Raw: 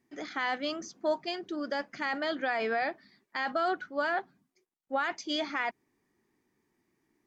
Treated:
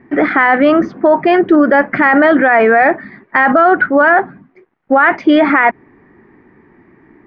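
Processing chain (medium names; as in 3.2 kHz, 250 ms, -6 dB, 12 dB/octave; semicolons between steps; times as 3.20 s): Chebyshev low-pass 1.9 kHz, order 3; loudness maximiser +31 dB; trim -1 dB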